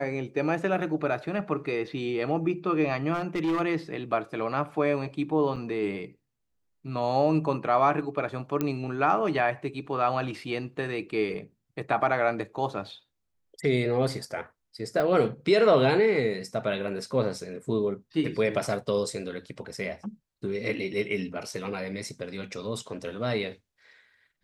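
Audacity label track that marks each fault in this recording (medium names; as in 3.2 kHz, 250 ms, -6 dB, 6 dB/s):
3.130000	3.610000	clipped -23 dBFS
5.560000	5.560000	dropout 4.8 ms
8.610000	8.610000	pop -14 dBFS
15.000000	15.000000	pop -17 dBFS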